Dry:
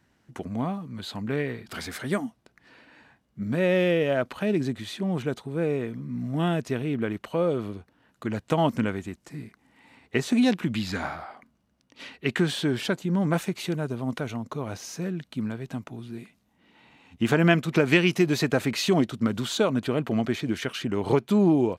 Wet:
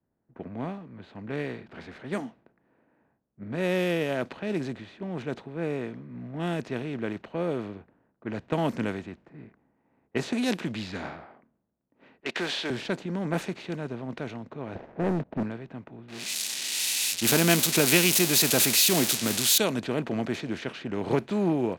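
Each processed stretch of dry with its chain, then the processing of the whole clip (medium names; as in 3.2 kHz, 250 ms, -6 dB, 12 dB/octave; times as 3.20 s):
12.20–12.70 s: band-pass 590–3700 Hz + waveshaping leveller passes 2
14.75–15.43 s: resonant low-pass 660 Hz, resonance Q 2.7 + waveshaping leveller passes 3
16.08–19.58 s: zero-crossing glitches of -15.5 dBFS + dynamic bell 1.8 kHz, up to -5 dB, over -41 dBFS, Q 7
whole clip: spectral levelling over time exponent 0.6; level-controlled noise filter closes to 1 kHz, open at -14.5 dBFS; three bands expanded up and down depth 100%; trim -8.5 dB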